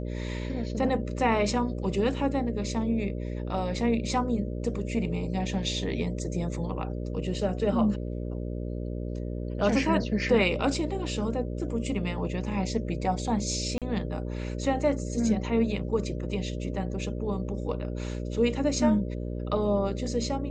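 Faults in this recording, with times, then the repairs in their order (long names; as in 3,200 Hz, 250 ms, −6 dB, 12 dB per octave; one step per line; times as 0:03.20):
mains buzz 60 Hz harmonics 10 −33 dBFS
0:13.78–0:13.82: drop-out 37 ms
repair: hum removal 60 Hz, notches 10
repair the gap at 0:13.78, 37 ms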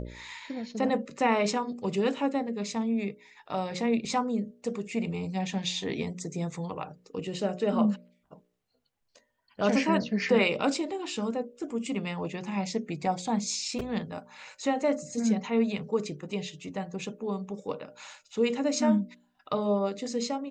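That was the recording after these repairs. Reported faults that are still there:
none of them is left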